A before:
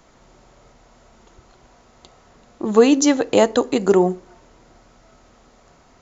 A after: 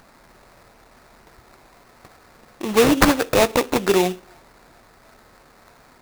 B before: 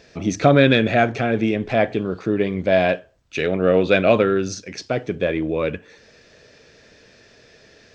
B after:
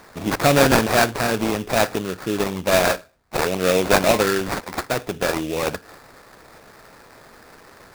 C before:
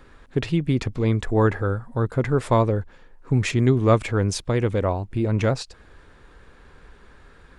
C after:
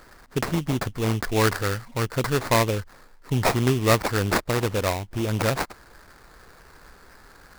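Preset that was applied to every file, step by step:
tilt shelf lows -6.5 dB, about 1.2 kHz; in parallel at -10 dB: wavefolder -12.5 dBFS; on the sum: sample-rate reducer 3.1 kHz, jitter 20%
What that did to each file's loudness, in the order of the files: -1.5 LU, -1.0 LU, -1.5 LU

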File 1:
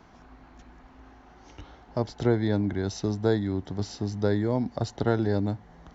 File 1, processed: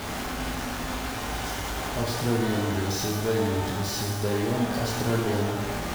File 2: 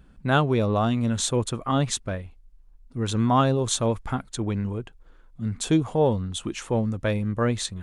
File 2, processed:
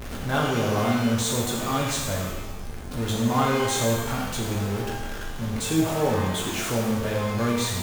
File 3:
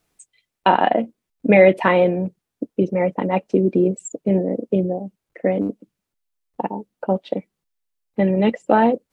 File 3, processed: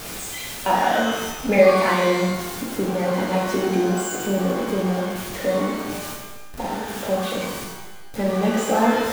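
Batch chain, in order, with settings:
jump at every zero crossing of -21 dBFS; pitch-shifted reverb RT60 1.1 s, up +12 st, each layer -8 dB, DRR -2.5 dB; trim -9 dB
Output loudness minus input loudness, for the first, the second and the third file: +0.5 LU, 0.0 LU, -2.0 LU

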